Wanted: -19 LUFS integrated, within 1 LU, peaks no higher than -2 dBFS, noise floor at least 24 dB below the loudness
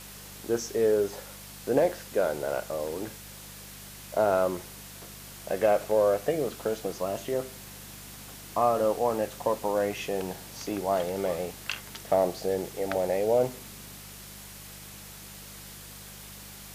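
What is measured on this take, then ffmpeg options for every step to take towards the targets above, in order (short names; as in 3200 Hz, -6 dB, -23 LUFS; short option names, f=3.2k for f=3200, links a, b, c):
hum 50 Hz; harmonics up to 200 Hz; hum level -49 dBFS; noise floor -45 dBFS; noise floor target -53 dBFS; loudness -28.5 LUFS; peak -12.0 dBFS; loudness target -19.0 LUFS
-> -af "bandreject=f=50:t=h:w=4,bandreject=f=100:t=h:w=4,bandreject=f=150:t=h:w=4,bandreject=f=200:t=h:w=4"
-af "afftdn=nr=8:nf=-45"
-af "volume=9.5dB"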